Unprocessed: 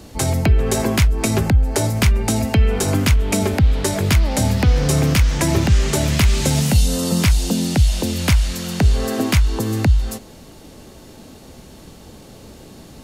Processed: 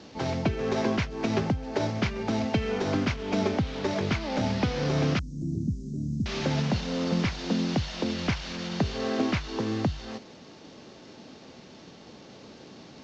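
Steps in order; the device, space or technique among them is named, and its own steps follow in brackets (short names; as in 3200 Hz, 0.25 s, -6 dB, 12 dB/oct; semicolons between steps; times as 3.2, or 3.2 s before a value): early wireless headset (HPF 160 Hz 12 dB/oct; CVSD 32 kbps); 5.19–6.26 elliptic band-stop 250–8700 Hz, stop band 70 dB; gain -5 dB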